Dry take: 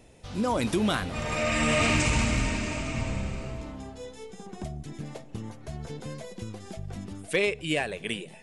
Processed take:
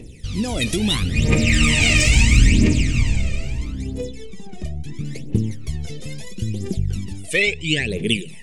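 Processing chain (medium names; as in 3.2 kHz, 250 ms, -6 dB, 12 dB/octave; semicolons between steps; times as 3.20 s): phaser 0.75 Hz, delay 1.7 ms, feedback 75%; 4.09–5.05 s: treble shelf 4.3 kHz -9 dB; 7.42–7.90 s: steep low-pass 8.3 kHz 72 dB/octave; high-order bell 960 Hz -14 dB; trim +7 dB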